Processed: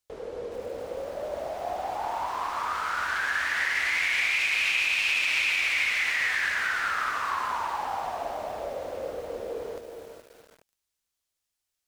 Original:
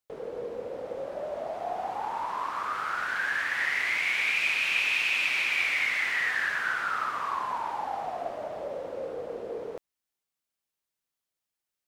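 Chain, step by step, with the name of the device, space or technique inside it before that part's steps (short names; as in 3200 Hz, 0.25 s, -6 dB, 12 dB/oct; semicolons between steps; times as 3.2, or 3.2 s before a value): car stereo with a boomy subwoofer (resonant low shelf 100 Hz +8 dB, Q 1.5; limiter -20.5 dBFS, peak gain reduction 6 dB); bell 6400 Hz +6 dB 2.3 oct; non-linear reverb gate 0.44 s rising, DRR 10 dB; lo-fi delay 0.42 s, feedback 35%, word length 8-bit, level -7.5 dB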